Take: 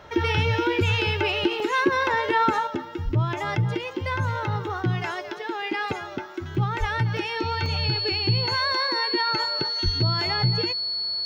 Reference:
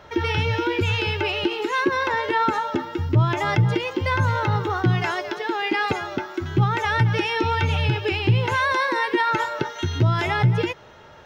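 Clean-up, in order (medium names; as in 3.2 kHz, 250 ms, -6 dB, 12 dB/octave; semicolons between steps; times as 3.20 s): band-stop 4.4 kHz, Q 30; 3.04–3.16 s: high-pass 140 Hz 24 dB/octave; 6.79–6.91 s: high-pass 140 Hz 24 dB/octave; 9.84–9.96 s: high-pass 140 Hz 24 dB/octave; interpolate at 1.60/6.55/7.17/7.66 s, 1.8 ms; 2.67 s: gain correction +5 dB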